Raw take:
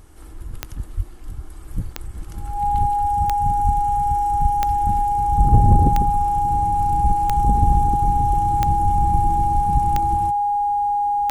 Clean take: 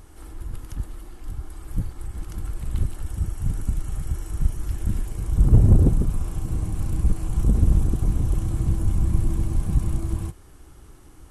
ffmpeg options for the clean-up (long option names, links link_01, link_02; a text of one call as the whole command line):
ffmpeg -i in.wav -filter_complex "[0:a]adeclick=threshold=4,bandreject=frequency=820:width=30,asplit=3[link_01][link_02][link_03];[link_01]afade=type=out:start_time=0.96:duration=0.02[link_04];[link_02]highpass=frequency=140:width=0.5412,highpass=frequency=140:width=1.3066,afade=type=in:start_time=0.96:duration=0.02,afade=type=out:start_time=1.08:duration=0.02[link_05];[link_03]afade=type=in:start_time=1.08:duration=0.02[link_06];[link_04][link_05][link_06]amix=inputs=3:normalize=0,asplit=3[link_07][link_08][link_09];[link_07]afade=type=out:start_time=3.63:duration=0.02[link_10];[link_08]highpass=frequency=140:width=0.5412,highpass=frequency=140:width=1.3066,afade=type=in:start_time=3.63:duration=0.02,afade=type=out:start_time=3.75:duration=0.02[link_11];[link_09]afade=type=in:start_time=3.75:duration=0.02[link_12];[link_10][link_11][link_12]amix=inputs=3:normalize=0,asplit=3[link_13][link_14][link_15];[link_13]afade=type=out:start_time=5.63:duration=0.02[link_16];[link_14]highpass=frequency=140:width=0.5412,highpass=frequency=140:width=1.3066,afade=type=in:start_time=5.63:duration=0.02,afade=type=out:start_time=5.75:duration=0.02[link_17];[link_15]afade=type=in:start_time=5.75:duration=0.02[link_18];[link_16][link_17][link_18]amix=inputs=3:normalize=0" out.wav